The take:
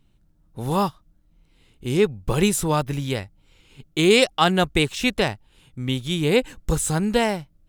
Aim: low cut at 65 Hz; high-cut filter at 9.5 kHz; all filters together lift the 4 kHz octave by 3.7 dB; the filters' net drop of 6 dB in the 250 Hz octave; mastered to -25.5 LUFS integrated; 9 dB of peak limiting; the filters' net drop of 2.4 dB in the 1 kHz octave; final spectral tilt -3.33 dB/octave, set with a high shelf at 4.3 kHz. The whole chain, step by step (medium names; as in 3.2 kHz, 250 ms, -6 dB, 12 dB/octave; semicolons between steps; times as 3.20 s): high-pass 65 Hz; low-pass 9.5 kHz; peaking EQ 250 Hz -9 dB; peaking EQ 1 kHz -3 dB; peaking EQ 4 kHz +3 dB; treble shelf 4.3 kHz +4 dB; trim -1 dB; peak limiter -10.5 dBFS